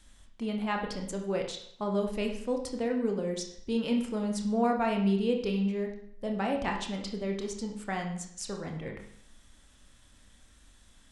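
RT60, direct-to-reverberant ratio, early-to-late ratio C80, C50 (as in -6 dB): 0.65 s, 2.0 dB, 10.0 dB, 6.5 dB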